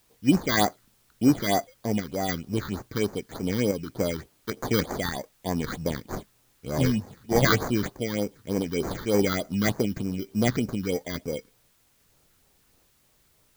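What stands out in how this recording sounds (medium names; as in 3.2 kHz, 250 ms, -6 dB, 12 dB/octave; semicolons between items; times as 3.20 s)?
aliases and images of a low sample rate 2.7 kHz, jitter 0%; phasing stages 6, 3.3 Hz, lowest notch 650–3400 Hz; random-step tremolo; a quantiser's noise floor 12-bit, dither triangular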